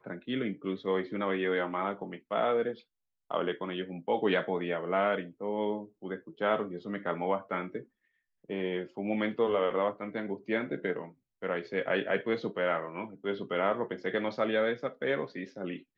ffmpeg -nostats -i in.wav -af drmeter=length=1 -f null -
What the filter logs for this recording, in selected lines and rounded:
Channel 1: DR: 11.6
Overall DR: 11.6